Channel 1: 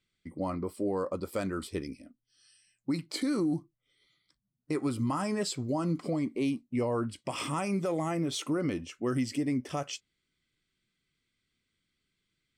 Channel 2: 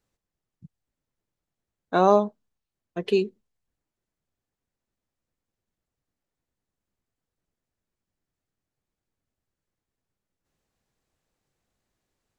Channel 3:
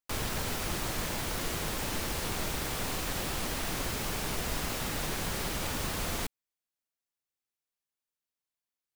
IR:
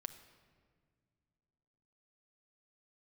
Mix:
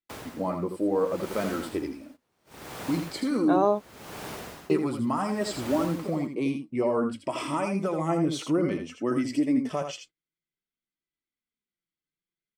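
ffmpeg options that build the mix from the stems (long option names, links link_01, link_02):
-filter_complex "[0:a]flanger=delay=3:depth=3.4:regen=37:speed=0.54:shape=sinusoidal,volume=1dB,asplit=3[link_01][link_02][link_03];[link_02]volume=-7dB[link_04];[1:a]adelay=1550,volume=-12dB[link_05];[2:a]highpass=75,aeval=exprs='val(0)*pow(10,-23*(0.5-0.5*cos(2*PI*0.7*n/s))/20)':channel_layout=same,volume=-7.5dB,asplit=2[link_06][link_07];[link_07]volume=-11dB[link_08];[link_03]apad=whole_len=614676[link_09];[link_05][link_09]sidechaingate=range=-33dB:threshold=-59dB:ratio=16:detection=peak[link_10];[link_04][link_08]amix=inputs=2:normalize=0,aecho=0:1:81:1[link_11];[link_01][link_10][link_06][link_11]amix=inputs=4:normalize=0,agate=range=-18dB:threshold=-53dB:ratio=16:detection=peak,equalizer=frequency=600:width=0.3:gain=7.5"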